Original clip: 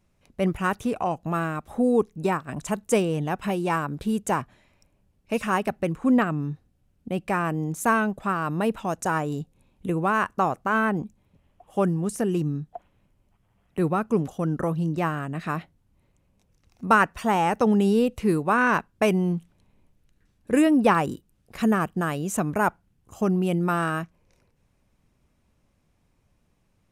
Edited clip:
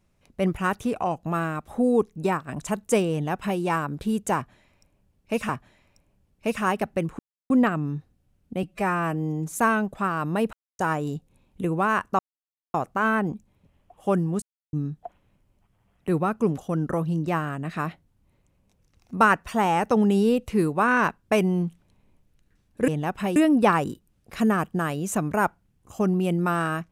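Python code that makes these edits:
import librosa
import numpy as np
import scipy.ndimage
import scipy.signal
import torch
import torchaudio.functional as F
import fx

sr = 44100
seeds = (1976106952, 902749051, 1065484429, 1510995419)

y = fx.edit(x, sr, fx.duplicate(start_s=3.12, length_s=0.48, to_s=20.58),
    fx.repeat(start_s=4.35, length_s=1.14, count=2),
    fx.insert_silence(at_s=6.05, length_s=0.31),
    fx.stretch_span(start_s=7.18, length_s=0.6, factor=1.5),
    fx.silence(start_s=8.78, length_s=0.26),
    fx.insert_silence(at_s=10.44, length_s=0.55),
    fx.silence(start_s=12.12, length_s=0.31), tone=tone)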